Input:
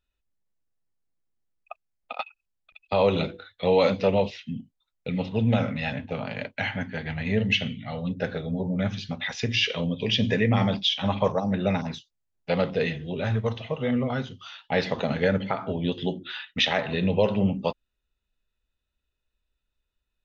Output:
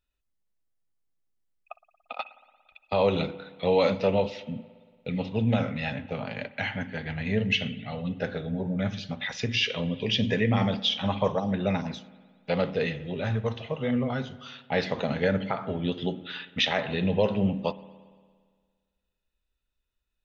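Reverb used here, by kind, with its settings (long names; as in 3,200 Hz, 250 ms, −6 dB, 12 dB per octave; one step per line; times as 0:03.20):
spring reverb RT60 1.7 s, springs 57 ms, chirp 70 ms, DRR 16.5 dB
level −2 dB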